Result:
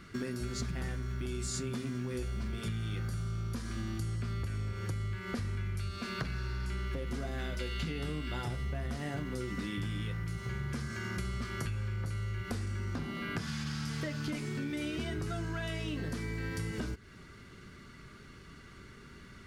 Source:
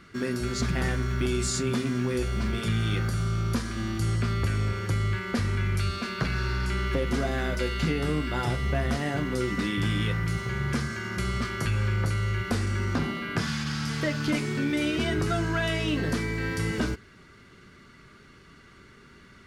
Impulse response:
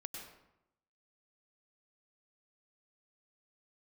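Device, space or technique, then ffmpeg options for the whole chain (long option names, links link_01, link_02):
ASMR close-microphone chain: -filter_complex "[0:a]lowshelf=frequency=180:gain=6,acompressor=threshold=-32dB:ratio=6,highshelf=frequency=6000:gain=4.5,asettb=1/sr,asplit=3[link_01][link_02][link_03];[link_01]atrim=end=7.394[link_04];[link_02]atrim=start=7.39:end=8.43,asetpts=PTS-STARTPTS,afade=type=in:duration=0.004:curve=qsin,afade=type=out:start_time=1.036:duration=0.004:curve=qsin,equalizer=frequency=3200:width=1.5:gain=5.5[link_05];[link_03]atrim=start=8.426[link_06];[link_04][link_05]acrossfade=duration=0.004:curve1=hsin:curve2=qsin[link_07];[link_07][link_06]acrossfade=duration=0.004:curve1=qsin:curve2=hsin,volume=-2dB"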